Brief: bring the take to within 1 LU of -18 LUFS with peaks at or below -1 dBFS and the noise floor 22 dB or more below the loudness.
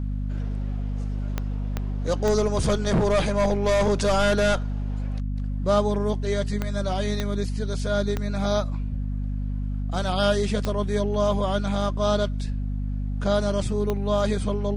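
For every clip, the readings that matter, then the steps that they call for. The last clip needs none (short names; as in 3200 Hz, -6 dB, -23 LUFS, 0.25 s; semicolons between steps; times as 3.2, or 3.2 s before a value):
clicks 8; hum 50 Hz; harmonics up to 250 Hz; hum level -25 dBFS; loudness -25.5 LUFS; peak -9.0 dBFS; loudness target -18.0 LUFS
-> de-click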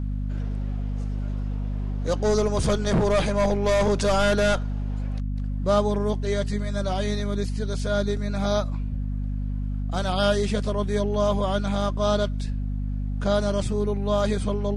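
clicks 2; hum 50 Hz; harmonics up to 250 Hz; hum level -25 dBFS
-> de-hum 50 Hz, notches 5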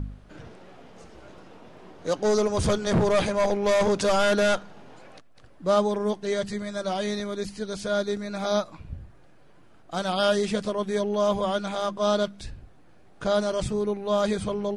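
hum none; loudness -25.5 LUFS; peak -10.5 dBFS; loudness target -18.0 LUFS
-> gain +7.5 dB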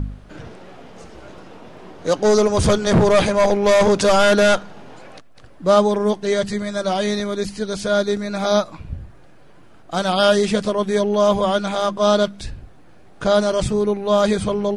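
loudness -18.0 LUFS; peak -3.0 dBFS; noise floor -44 dBFS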